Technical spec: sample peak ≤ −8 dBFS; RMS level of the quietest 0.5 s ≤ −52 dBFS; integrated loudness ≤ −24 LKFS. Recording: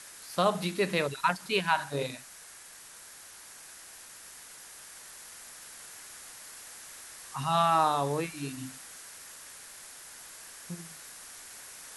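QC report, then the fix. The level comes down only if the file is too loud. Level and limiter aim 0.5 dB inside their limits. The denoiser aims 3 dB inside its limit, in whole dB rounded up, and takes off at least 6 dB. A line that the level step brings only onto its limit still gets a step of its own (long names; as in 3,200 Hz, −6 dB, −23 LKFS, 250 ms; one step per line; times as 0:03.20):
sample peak −11.5 dBFS: in spec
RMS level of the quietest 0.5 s −50 dBFS: out of spec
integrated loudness −29.5 LKFS: in spec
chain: broadband denoise 6 dB, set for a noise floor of −50 dBFS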